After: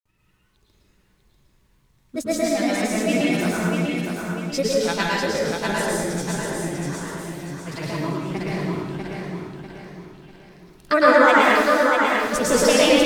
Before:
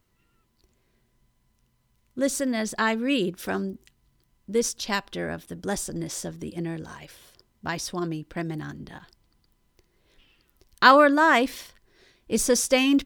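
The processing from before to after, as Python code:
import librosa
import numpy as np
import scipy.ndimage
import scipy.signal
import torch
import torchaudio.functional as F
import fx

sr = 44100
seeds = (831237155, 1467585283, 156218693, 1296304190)

p1 = fx.granulator(x, sr, seeds[0], grain_ms=100.0, per_s=20.0, spray_ms=100.0, spread_st=3)
p2 = p1 + fx.echo_feedback(p1, sr, ms=645, feedback_pct=39, wet_db=-4.5, dry=0)
y = fx.rev_plate(p2, sr, seeds[1], rt60_s=1.1, hf_ratio=0.9, predelay_ms=95, drr_db=-5.0)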